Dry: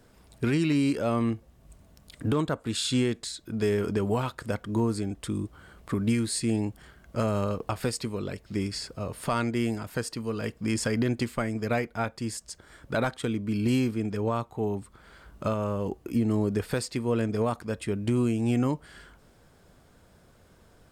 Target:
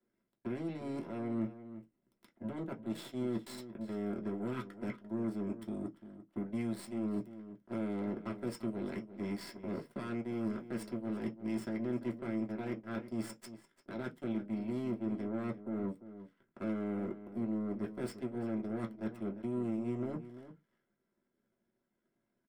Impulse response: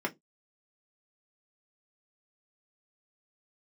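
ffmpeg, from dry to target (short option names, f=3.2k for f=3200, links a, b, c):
-filter_complex "[0:a]equalizer=f=850:t=o:w=0.7:g=-10,areverse,acompressor=threshold=-35dB:ratio=16,areverse,atempo=0.93,acrossover=split=200|4000[a][b][c];[b]asoftclip=type=tanh:threshold=-36.5dB[d];[a][d][c]amix=inputs=3:normalize=0,aeval=exprs='0.0447*(cos(1*acos(clip(val(0)/0.0447,-1,1)))-cos(1*PI/2))+0.00251*(cos(3*acos(clip(val(0)/0.0447,-1,1)))-cos(3*PI/2))+0.00501*(cos(4*acos(clip(val(0)/0.0447,-1,1)))-cos(4*PI/2))+0.00562*(cos(7*acos(clip(val(0)/0.0447,-1,1)))-cos(7*PI/2))+0.000282*(cos(8*acos(clip(val(0)/0.0447,-1,1)))-cos(8*PI/2))':c=same,asplit=2[e][f];[f]adelay=344,volume=-13dB,highshelf=f=4k:g=-7.74[g];[e][g]amix=inputs=2:normalize=0[h];[1:a]atrim=start_sample=2205[i];[h][i]afir=irnorm=-1:irlink=0,volume=-6.5dB"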